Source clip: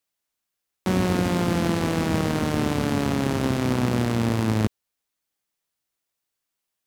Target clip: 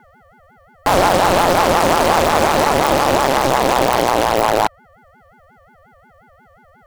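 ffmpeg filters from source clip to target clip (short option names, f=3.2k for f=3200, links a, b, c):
-filter_complex "[0:a]asplit=2[a][b];[b]alimiter=limit=-19dB:level=0:latency=1:release=410,volume=1dB[c];[a][c]amix=inputs=2:normalize=0,aeval=exprs='val(0)+0.00447*sin(2*PI*620*n/s)':c=same,aeval=exprs='0.501*sin(PI/2*2.51*val(0)/0.501)':c=same,aeval=exprs='0.501*(cos(1*acos(clip(val(0)/0.501,-1,1)))-cos(1*PI/2))+0.126*(cos(6*acos(clip(val(0)/0.501,-1,1)))-cos(6*PI/2))+0.1*(cos(7*acos(clip(val(0)/0.501,-1,1)))-cos(7*PI/2))':c=same,aeval=exprs='max(val(0),0)':c=same,aeval=exprs='val(0)*sin(2*PI*700*n/s+700*0.25/5.6*sin(2*PI*5.6*n/s))':c=same"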